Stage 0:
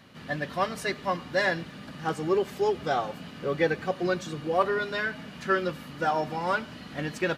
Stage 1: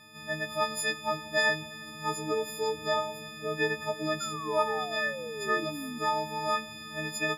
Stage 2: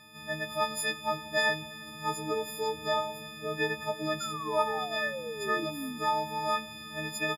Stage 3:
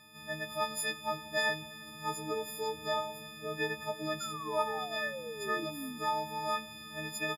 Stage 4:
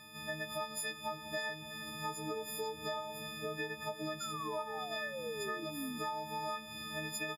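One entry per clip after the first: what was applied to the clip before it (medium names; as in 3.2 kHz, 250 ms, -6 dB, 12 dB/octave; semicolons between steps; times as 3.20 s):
partials quantised in pitch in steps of 6 st; filtered feedback delay 169 ms, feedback 76%, low-pass 2 kHz, level -18.5 dB; painted sound fall, 4.20–5.99 s, 230–1400 Hz -33 dBFS; trim -5.5 dB
doubling 15 ms -10 dB
treble shelf 8.1 kHz +4 dB; trim -4 dB
compression 6:1, threshold -40 dBFS, peak gain reduction 14 dB; trim +3.5 dB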